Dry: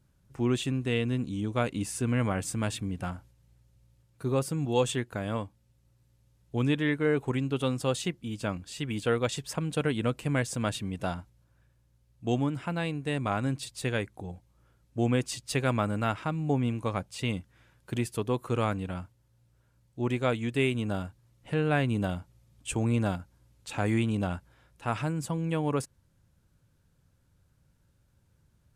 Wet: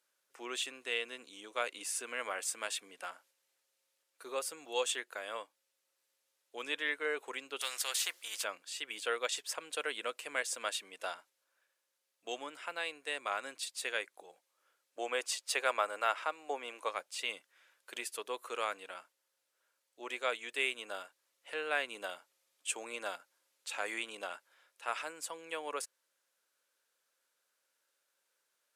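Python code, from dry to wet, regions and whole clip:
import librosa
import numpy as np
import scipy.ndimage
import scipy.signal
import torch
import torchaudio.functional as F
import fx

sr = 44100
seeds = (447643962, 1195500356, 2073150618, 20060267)

y = fx.chain(x, sr, fx.highpass(hz=1100.0, slope=6),
    fx.spectral_comp(ratio=2.0), at=(7.61, 8.44))
y = fx.chain(y, sr, fx.highpass(hz=260.0, slope=12),
    fx.peak_eq(hz=770.0, db=5.0, octaves=2.0), at=(14.98, 16.89))
y = scipy.signal.sosfilt(scipy.signal.butter(4, 550.0, 'highpass', fs=sr, output='sos'), y)
y = fx.peak_eq(y, sr, hz=780.0, db=-8.0, octaves=1.1)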